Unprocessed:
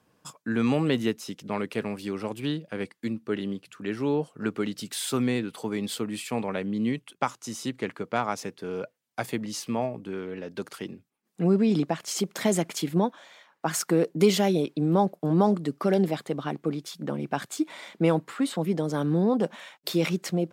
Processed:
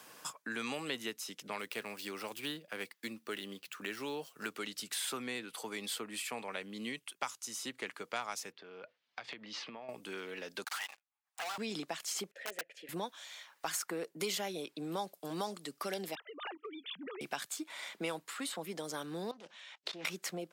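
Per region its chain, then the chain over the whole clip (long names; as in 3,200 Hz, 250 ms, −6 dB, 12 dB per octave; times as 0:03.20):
0:01.59–0:04.58: running median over 5 samples + high-shelf EQ 7,900 Hz +5.5 dB
0:08.52–0:09.89: low-pass filter 4,100 Hz 24 dB per octave + downward compressor 10 to 1, threshold −39 dBFS
0:10.64–0:11.58: elliptic high-pass filter 760 Hz, stop band 50 dB + spectral tilt −4 dB per octave + leveller curve on the samples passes 5
0:12.31–0:12.89: formant filter e + wrap-around overflow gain 28 dB
0:16.15–0:17.21: three sine waves on the formant tracks + downward compressor 10 to 1, threshold −34 dBFS
0:19.31–0:20.05: high-frequency loss of the air 120 metres + output level in coarse steps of 19 dB + highs frequency-modulated by the lows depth 0.33 ms
whole clip: high-pass filter 1,300 Hz 6 dB per octave; high-shelf EQ 6,300 Hz +6 dB; multiband upward and downward compressor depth 70%; level −4.5 dB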